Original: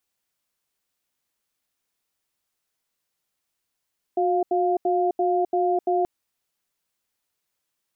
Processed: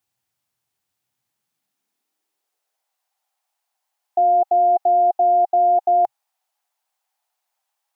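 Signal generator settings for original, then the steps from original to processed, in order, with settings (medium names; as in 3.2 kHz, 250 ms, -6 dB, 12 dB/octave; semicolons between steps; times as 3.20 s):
cadence 363 Hz, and 703 Hz, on 0.26 s, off 0.08 s, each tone -21.5 dBFS 1.88 s
graphic EQ with 31 bands 125 Hz +8 dB, 500 Hz -4 dB, 800 Hz +7 dB; high-pass sweep 91 Hz -> 740 Hz, 1.01–3.00 s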